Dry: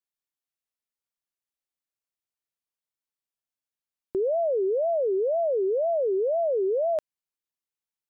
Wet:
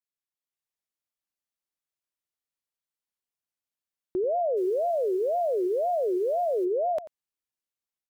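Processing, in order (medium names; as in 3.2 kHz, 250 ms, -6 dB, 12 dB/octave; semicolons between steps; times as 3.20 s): level rider gain up to 5.5 dB; 4.56–6.64 s: added noise white -55 dBFS; wow and flutter 93 cents; delay 89 ms -15.5 dB; trim -7 dB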